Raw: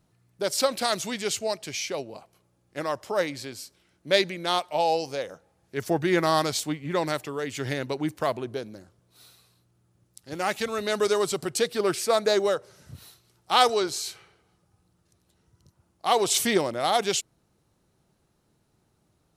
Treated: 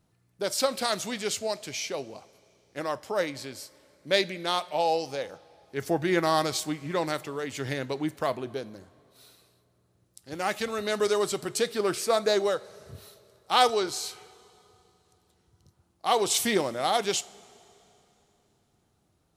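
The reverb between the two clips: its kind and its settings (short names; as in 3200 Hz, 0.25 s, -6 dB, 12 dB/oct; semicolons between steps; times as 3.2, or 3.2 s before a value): two-slope reverb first 0.31 s, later 3.1 s, from -17 dB, DRR 14 dB; gain -2 dB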